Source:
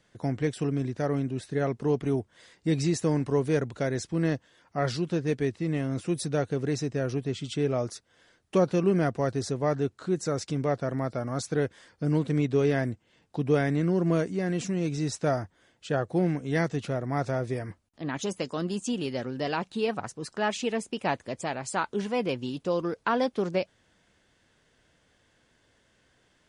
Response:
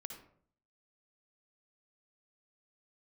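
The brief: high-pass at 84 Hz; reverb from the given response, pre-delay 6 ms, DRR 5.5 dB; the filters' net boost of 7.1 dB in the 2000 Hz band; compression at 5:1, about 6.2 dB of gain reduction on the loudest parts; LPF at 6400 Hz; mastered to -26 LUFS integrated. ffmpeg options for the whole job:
-filter_complex "[0:a]highpass=84,lowpass=6.4k,equalizer=f=2k:t=o:g=9,acompressor=threshold=-25dB:ratio=5,asplit=2[a][b];[1:a]atrim=start_sample=2205,adelay=6[c];[b][c]afir=irnorm=-1:irlink=0,volume=-2dB[d];[a][d]amix=inputs=2:normalize=0,volume=4.5dB"

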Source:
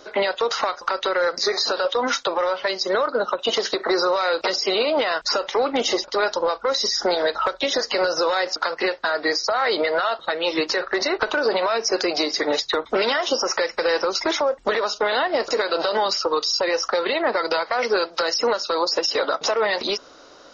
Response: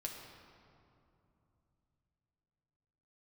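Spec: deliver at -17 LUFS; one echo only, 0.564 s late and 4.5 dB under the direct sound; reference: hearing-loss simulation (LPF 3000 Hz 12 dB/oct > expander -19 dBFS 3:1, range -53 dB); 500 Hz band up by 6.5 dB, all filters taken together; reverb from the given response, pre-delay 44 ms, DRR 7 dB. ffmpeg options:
-filter_complex "[0:a]equalizer=f=500:t=o:g=7.5,aecho=1:1:564:0.596,asplit=2[a][b];[1:a]atrim=start_sample=2205,adelay=44[c];[b][c]afir=irnorm=-1:irlink=0,volume=-6dB[d];[a][d]amix=inputs=2:normalize=0,lowpass=3k,agate=range=-53dB:threshold=-19dB:ratio=3,volume=-1dB"

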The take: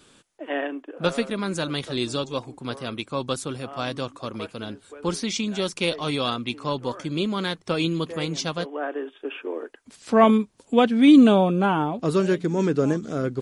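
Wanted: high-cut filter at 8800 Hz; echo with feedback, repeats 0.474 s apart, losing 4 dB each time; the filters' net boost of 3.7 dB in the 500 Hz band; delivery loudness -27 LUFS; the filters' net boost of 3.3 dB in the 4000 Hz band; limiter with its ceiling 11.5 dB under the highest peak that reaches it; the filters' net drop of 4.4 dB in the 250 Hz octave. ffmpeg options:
-af "lowpass=8.8k,equalizer=f=250:t=o:g=-7.5,equalizer=f=500:t=o:g=6.5,equalizer=f=4k:t=o:g=4,alimiter=limit=-13dB:level=0:latency=1,aecho=1:1:474|948|1422|1896|2370|2844|3318|3792|4266:0.631|0.398|0.25|0.158|0.0994|0.0626|0.0394|0.0249|0.0157,volume=-3dB"

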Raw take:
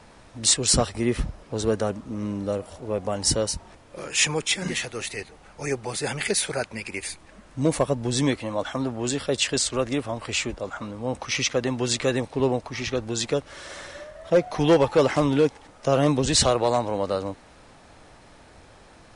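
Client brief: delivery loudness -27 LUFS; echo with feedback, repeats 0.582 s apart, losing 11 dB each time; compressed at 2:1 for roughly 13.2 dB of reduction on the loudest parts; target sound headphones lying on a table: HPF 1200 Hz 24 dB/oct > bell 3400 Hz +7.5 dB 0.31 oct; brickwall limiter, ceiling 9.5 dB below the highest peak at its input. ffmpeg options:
-af "acompressor=threshold=-39dB:ratio=2,alimiter=level_in=4.5dB:limit=-24dB:level=0:latency=1,volume=-4.5dB,highpass=f=1.2k:w=0.5412,highpass=f=1.2k:w=1.3066,equalizer=f=3.4k:t=o:w=0.31:g=7.5,aecho=1:1:582|1164|1746:0.282|0.0789|0.0221,volume=14dB"

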